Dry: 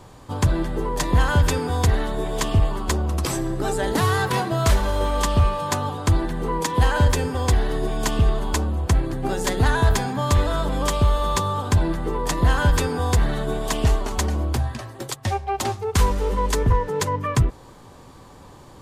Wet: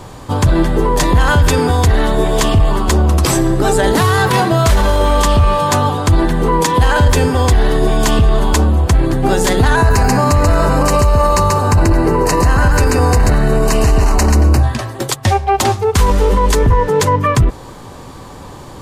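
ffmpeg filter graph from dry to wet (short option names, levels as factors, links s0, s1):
-filter_complex "[0:a]asettb=1/sr,asplit=3[s0][s1][s2];[s0]atrim=end=9.764[s3];[s1]atrim=start=9.76:end=14.63,asetpts=PTS-STARTPTS,afade=t=in:d=0.004:c=qsin,afade=t=out:st=4.866:d=0.004:c=qsin,asuperstop=centerf=3400:order=4:qfactor=3.4,aecho=1:1:136:0.668,atrim=end_sample=214767[s4];[s2]atrim=start=14.626[s5];[s3][s4]acrossfade=d=0.004:c1=hsin:c2=qsin[s6];[s6][s5]acrossfade=d=0.004:c1=qsin:c2=hsin,alimiter=limit=0.168:level=0:latency=1:release=22,acontrast=87,volume=1.78"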